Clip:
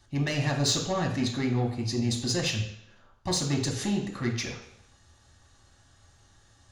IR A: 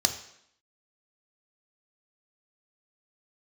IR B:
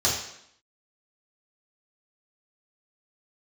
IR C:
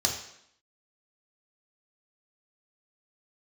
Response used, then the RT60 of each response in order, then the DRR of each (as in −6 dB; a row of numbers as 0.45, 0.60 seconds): C; 0.70, 0.70, 0.70 seconds; 5.5, −7.5, −0.5 decibels